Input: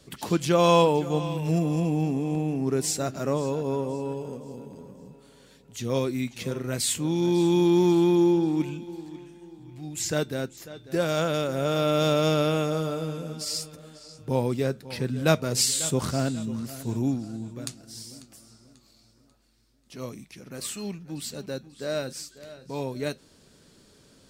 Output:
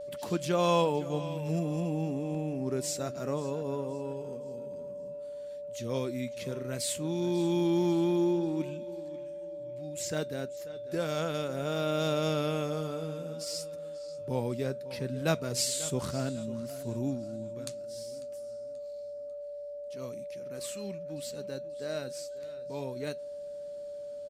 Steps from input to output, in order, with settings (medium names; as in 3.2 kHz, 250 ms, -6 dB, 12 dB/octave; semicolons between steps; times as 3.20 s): vibrato 0.61 Hz 31 cents; resampled via 32 kHz; whistle 580 Hz -31 dBFS; trim -7 dB